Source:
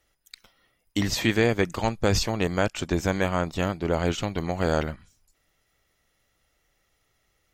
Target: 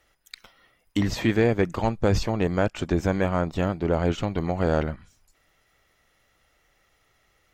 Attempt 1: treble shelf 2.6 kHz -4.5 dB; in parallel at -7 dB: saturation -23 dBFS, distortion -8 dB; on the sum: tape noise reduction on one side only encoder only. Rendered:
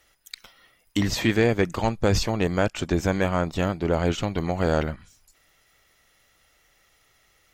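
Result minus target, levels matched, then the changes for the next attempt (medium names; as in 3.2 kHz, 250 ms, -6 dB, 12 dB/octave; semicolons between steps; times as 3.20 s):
4 kHz band +4.5 dB
change: treble shelf 2.6 kHz -12.5 dB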